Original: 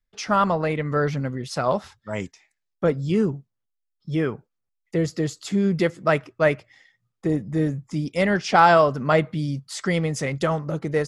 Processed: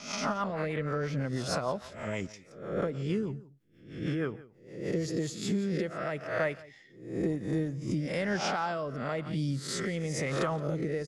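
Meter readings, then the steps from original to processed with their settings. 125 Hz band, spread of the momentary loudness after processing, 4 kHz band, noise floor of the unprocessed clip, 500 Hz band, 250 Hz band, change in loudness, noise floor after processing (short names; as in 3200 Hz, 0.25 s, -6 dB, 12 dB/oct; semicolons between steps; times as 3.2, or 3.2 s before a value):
-8.0 dB, 9 LU, -5.5 dB, -79 dBFS, -10.0 dB, -8.0 dB, -10.0 dB, -57 dBFS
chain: spectral swells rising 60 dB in 0.52 s; compressor 6:1, threshold -27 dBFS, peak gain reduction 16.5 dB; on a send: echo 0.173 s -19 dB; on the sum: rotary speaker horn 6.3 Hz, later 1 Hz, at 4.84; backwards sustainer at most 100 dB/s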